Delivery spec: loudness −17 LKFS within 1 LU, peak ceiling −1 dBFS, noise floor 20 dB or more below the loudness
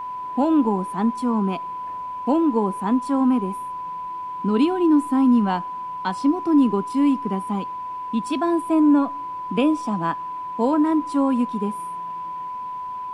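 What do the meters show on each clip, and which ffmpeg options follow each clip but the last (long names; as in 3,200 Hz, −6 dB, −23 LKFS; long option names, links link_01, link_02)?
interfering tone 1,000 Hz; level of the tone −28 dBFS; integrated loudness −22.0 LKFS; sample peak −7.0 dBFS; target loudness −17.0 LKFS
→ -af "bandreject=frequency=1000:width=30"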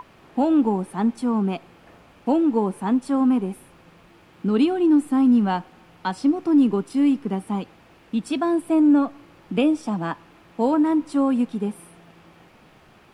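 interfering tone none found; integrated loudness −22.0 LKFS; sample peak −8.0 dBFS; target loudness −17.0 LKFS
→ -af "volume=5dB"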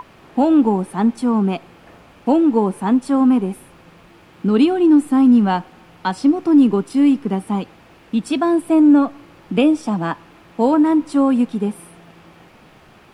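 integrated loudness −17.0 LKFS; sample peak −3.0 dBFS; background noise floor −48 dBFS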